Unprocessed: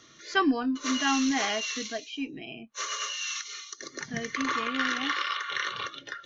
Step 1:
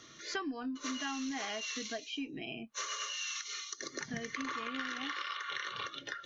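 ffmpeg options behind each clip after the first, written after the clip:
ffmpeg -i in.wav -af "acompressor=threshold=-36dB:ratio=6" out.wav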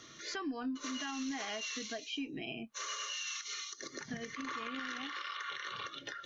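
ffmpeg -i in.wav -af "alimiter=level_in=7.5dB:limit=-24dB:level=0:latency=1:release=69,volume=-7.5dB,volume=1dB" out.wav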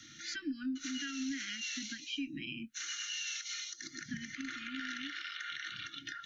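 ffmpeg -i in.wav -af "asuperstop=centerf=670:order=20:qfactor=0.66,volume=1dB" out.wav

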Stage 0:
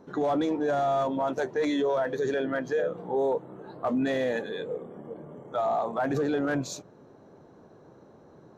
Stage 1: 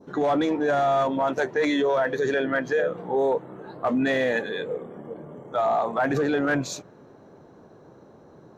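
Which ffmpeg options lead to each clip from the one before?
ffmpeg -i in.wav -af "adynamicequalizer=threshold=0.00562:dfrequency=2000:dqfactor=0.97:tfrequency=2000:tqfactor=0.97:attack=5:release=100:ratio=0.375:range=3:mode=boostabove:tftype=bell,volume=3dB" out.wav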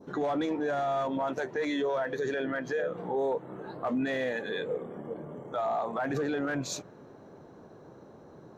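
ffmpeg -i in.wav -af "alimiter=limit=-22.5dB:level=0:latency=1:release=171,volume=-1dB" out.wav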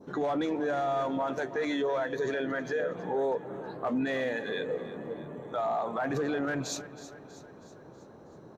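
ffmpeg -i in.wav -af "aecho=1:1:321|642|963|1284|1605:0.178|0.096|0.0519|0.028|0.0151" out.wav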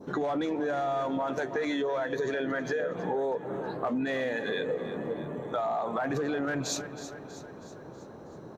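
ffmpeg -i in.wav -af "acompressor=threshold=-32dB:ratio=6,volume=5dB" out.wav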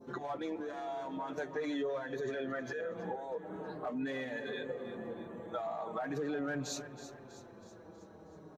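ffmpeg -i in.wav -filter_complex "[0:a]asplit=2[link_01][link_02];[link_02]adelay=5.3,afreqshift=-0.42[link_03];[link_01][link_03]amix=inputs=2:normalize=1,volume=-5dB" out.wav

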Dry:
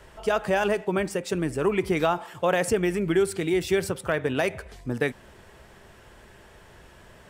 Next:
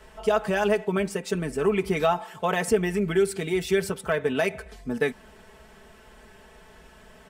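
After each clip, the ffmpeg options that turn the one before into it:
ffmpeg -i in.wav -af "aecho=1:1:4.6:0.71,volume=-2dB" out.wav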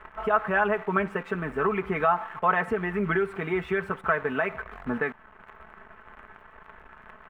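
ffmpeg -i in.wav -af "alimiter=limit=-17.5dB:level=0:latency=1:release=433,acrusher=bits=8:dc=4:mix=0:aa=0.000001,firequalizer=gain_entry='entry(510,0);entry(1200,13);entry(4800,-24)':delay=0.05:min_phase=1" out.wav

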